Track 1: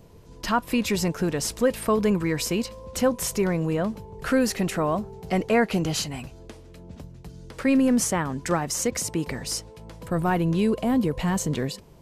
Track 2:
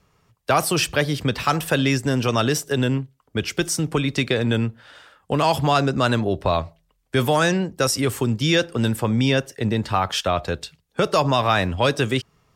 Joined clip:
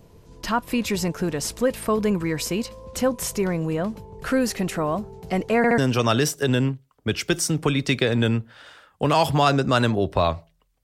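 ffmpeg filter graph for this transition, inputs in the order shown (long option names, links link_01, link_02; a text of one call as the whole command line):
ffmpeg -i cue0.wav -i cue1.wav -filter_complex "[0:a]apad=whole_dur=10.83,atrim=end=10.83,asplit=3[link_01][link_02][link_03];[link_01]atrim=end=5.642[link_04];[link_02]atrim=start=5.568:end=5.642[link_05];[link_03]atrim=start=5.568:end=5.642[link_06];[1:a]atrim=start=2.068:end=7.12[link_07];[link_04][link_05]acrossfade=duration=0.004:curve1=hsin:curve2=hsin[link_08];[link_08][link_06]acrossfade=duration=0.004:curve1=hsin:curve2=hsin[link_09];[link_09][link_07]acrossfade=duration=0.004:curve1=hsin:curve2=hsin" out.wav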